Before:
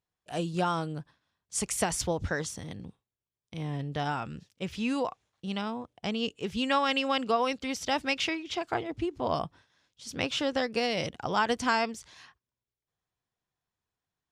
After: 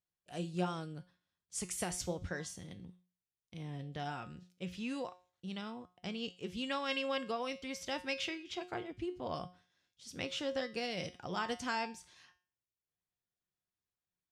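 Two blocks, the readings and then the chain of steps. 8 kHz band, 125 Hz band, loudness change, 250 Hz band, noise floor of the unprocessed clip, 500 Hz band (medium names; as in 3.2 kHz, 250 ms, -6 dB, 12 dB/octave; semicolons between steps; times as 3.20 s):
-8.0 dB, -8.0 dB, -9.0 dB, -8.5 dB, under -85 dBFS, -8.5 dB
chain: peaking EQ 920 Hz -4.5 dB 1.1 oct; feedback comb 180 Hz, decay 0.37 s, harmonics all, mix 70%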